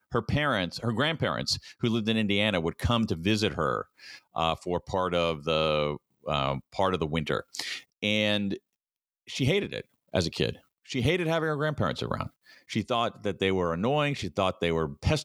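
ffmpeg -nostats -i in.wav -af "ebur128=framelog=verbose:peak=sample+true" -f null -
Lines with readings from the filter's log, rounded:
Integrated loudness:
  I:         -28.4 LUFS
  Threshold: -38.6 LUFS
Loudness range:
  LRA:         2.6 LU
  Threshold: -48.9 LUFS
  LRA low:   -30.0 LUFS
  LRA high:  -27.4 LUFS
Sample peak:
  Peak:       -9.5 dBFS
True peak:
  Peak:       -9.5 dBFS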